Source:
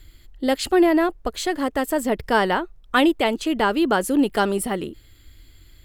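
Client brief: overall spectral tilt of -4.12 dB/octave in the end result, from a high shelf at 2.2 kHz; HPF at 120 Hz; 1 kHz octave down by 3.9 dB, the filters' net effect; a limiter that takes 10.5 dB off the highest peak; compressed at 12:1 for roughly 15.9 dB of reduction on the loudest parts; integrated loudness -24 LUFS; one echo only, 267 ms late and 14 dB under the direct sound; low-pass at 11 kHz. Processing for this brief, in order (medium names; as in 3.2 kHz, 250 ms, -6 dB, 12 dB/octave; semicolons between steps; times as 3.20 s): high-pass 120 Hz; low-pass 11 kHz; peaking EQ 1 kHz -4.5 dB; treble shelf 2.2 kHz -4 dB; compression 12:1, threshold -30 dBFS; peak limiter -28 dBFS; delay 267 ms -14 dB; trim +13 dB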